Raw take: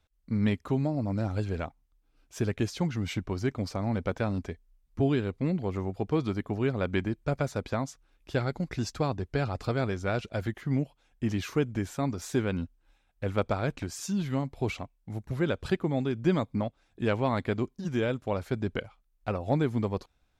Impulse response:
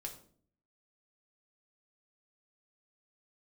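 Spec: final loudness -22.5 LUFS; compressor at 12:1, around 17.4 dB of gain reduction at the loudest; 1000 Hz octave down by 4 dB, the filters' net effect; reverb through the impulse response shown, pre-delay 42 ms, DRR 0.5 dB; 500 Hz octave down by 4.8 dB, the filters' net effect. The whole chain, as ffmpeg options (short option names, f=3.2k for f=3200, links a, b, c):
-filter_complex "[0:a]equalizer=f=500:t=o:g=-5.5,equalizer=f=1k:t=o:g=-3.5,acompressor=threshold=-41dB:ratio=12,asplit=2[a][b];[1:a]atrim=start_sample=2205,adelay=42[c];[b][c]afir=irnorm=-1:irlink=0,volume=2.5dB[d];[a][d]amix=inputs=2:normalize=0,volume=21dB"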